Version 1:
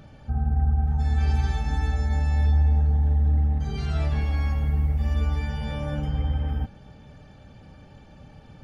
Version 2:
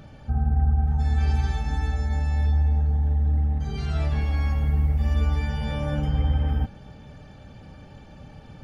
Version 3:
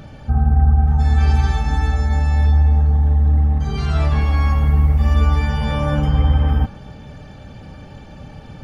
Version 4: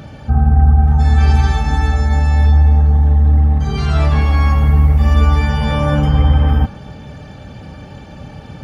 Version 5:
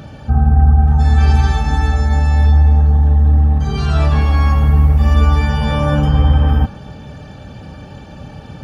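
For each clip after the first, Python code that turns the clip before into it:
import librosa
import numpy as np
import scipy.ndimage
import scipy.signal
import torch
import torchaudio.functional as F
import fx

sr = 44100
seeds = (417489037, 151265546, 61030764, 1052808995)

y1 = fx.rider(x, sr, range_db=4, speed_s=2.0)
y2 = fx.dynamic_eq(y1, sr, hz=1100.0, q=3.5, threshold_db=-58.0, ratio=4.0, max_db=8)
y2 = y2 * librosa.db_to_amplitude(7.5)
y3 = scipy.signal.sosfilt(scipy.signal.butter(2, 50.0, 'highpass', fs=sr, output='sos'), y2)
y3 = y3 * librosa.db_to_amplitude(4.5)
y4 = fx.notch(y3, sr, hz=2100.0, q=8.9)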